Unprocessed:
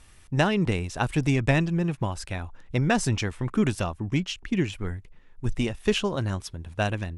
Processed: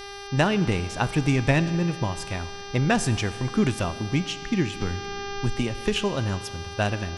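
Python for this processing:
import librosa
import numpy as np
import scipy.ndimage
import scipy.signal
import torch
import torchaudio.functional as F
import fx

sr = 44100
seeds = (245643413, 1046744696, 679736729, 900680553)

y = fx.dmg_buzz(x, sr, base_hz=400.0, harmonics=15, level_db=-40.0, tilt_db=-3, odd_only=False)
y = fx.rev_schroeder(y, sr, rt60_s=1.9, comb_ms=27, drr_db=14.5)
y = fx.band_squash(y, sr, depth_pct=70, at=(4.81, 5.96))
y = y * librosa.db_to_amplitude(1.0)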